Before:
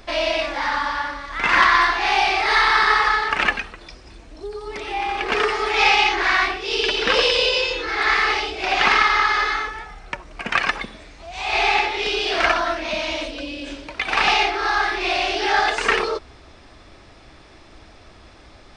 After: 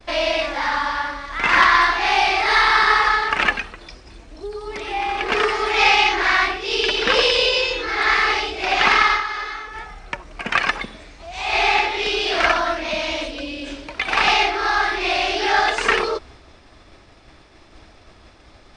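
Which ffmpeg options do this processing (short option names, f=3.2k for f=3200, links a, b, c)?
-filter_complex "[0:a]asplit=3[a][b][c];[a]atrim=end=9.25,asetpts=PTS-STARTPTS,afade=t=out:st=9.13:d=0.12:c=qua:silence=0.375837[d];[b]atrim=start=9.25:end=9.65,asetpts=PTS-STARTPTS,volume=-8.5dB[e];[c]atrim=start=9.65,asetpts=PTS-STARTPTS,afade=t=in:d=0.12:c=qua:silence=0.375837[f];[d][e][f]concat=n=3:v=0:a=1,agate=range=-33dB:threshold=-42dB:ratio=3:detection=peak,volume=1dB"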